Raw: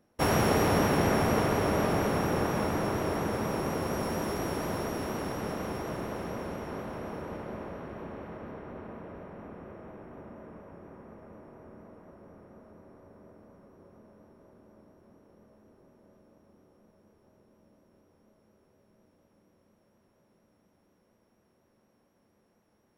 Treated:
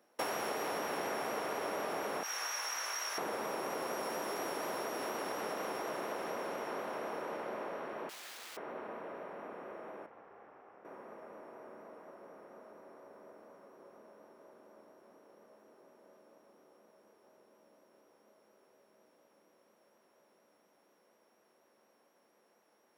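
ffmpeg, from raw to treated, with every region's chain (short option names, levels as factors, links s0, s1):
-filter_complex "[0:a]asettb=1/sr,asplit=3[s0][s1][s2];[s0]atrim=end=2.234[s3];[s1]atrim=start=2.23:end=3.18,asetpts=PTS-STARTPTS,afade=t=in:d=0.004:c=qsin,afade=t=out:st=0.946:d=0.004:c=qsin,highpass=1500,equalizer=f=5900:t=o:w=0.21:g=14.5,asplit=2[s4][s5];[s5]adelay=17,volume=0.631[s6];[s4][s6]amix=inputs=2:normalize=0,atrim=end_sample=41895[s7];[s2]atrim=start=3.176[s8];[s3][s7]acrossfade=d=0.004:c1=hsin:c2=qsin[s9];[s9][s8]acrossfade=d=0.004:c1=qsin:c2=hsin,asettb=1/sr,asplit=3[s10][s11][s12];[s10]atrim=end=8.094[s13];[s11]atrim=start=8.09:end=8.57,asetpts=PTS-STARTPTS,afade=t=in:d=0.004:c=qsin,afade=t=out:st=0.476:d=0.004:c=qsin,highshelf=f=2500:g=-5.5,aeval=exprs='(mod(211*val(0)+1,2)-1)/211':c=same[s14];[s12]atrim=start=8.566[s15];[s13][s14]acrossfade=d=0.004:c1=hsin:c2=qsin[s16];[s16][s15]acrossfade=d=0.004:c1=qsin:c2=hsin,asettb=1/sr,asplit=3[s17][s18][s19];[s17]atrim=end=10.064[s20];[s18]atrim=start=10.06:end=10.85,asetpts=PTS-STARTPTS,afade=t=in:d=0.004:c=qsin,afade=t=out:st=0.786:d=0.004:c=qsin,highpass=f=1300:p=1,aeval=exprs='val(0)*sin(2*PI*160*n/s)':c=same,aemphasis=mode=reproduction:type=riaa[s21];[s19]atrim=start=10.846[s22];[s20][s21]acrossfade=d=0.004:c1=hsin:c2=qsin[s23];[s23][s22]acrossfade=d=0.004:c1=qsin:c2=hsin,highpass=450,acompressor=threshold=0.0126:ratio=6,volume=1.41"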